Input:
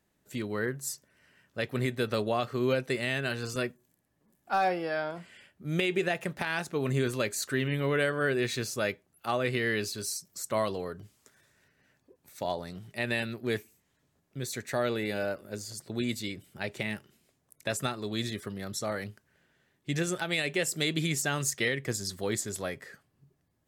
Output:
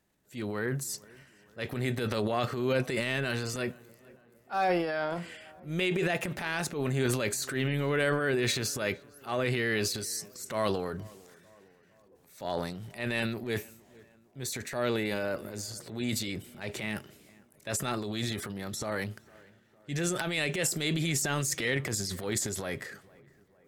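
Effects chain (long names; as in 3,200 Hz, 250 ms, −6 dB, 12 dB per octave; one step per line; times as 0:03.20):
transient designer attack −8 dB, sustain +9 dB
tape delay 457 ms, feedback 59%, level −22.5 dB, low-pass 1,900 Hz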